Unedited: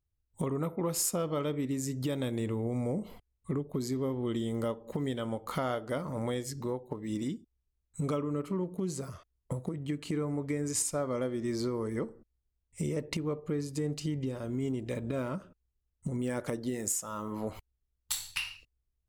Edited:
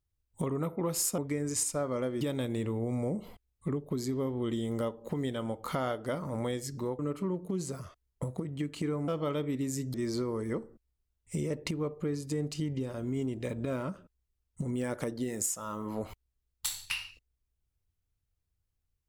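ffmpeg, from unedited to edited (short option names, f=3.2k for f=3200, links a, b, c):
-filter_complex "[0:a]asplit=6[a][b][c][d][e][f];[a]atrim=end=1.182[g];[b]atrim=start=10.368:end=11.402[h];[c]atrim=start=2.038:end=6.822[i];[d]atrim=start=8.278:end=10.372[j];[e]atrim=start=1.178:end=2.042[k];[f]atrim=start=11.398[l];[g][h]acrossfade=d=0.004:c1=hsin:c2=hsin[m];[m][i]acrossfade=d=0.004:c1=hsin:c2=hsin[n];[n][j]acrossfade=d=0.004:c1=hsin:c2=hsin[o];[o][k]acrossfade=d=0.004:c1=hsin:c2=hsin[p];[p][l]acrossfade=d=0.004:c1=hsin:c2=hsin"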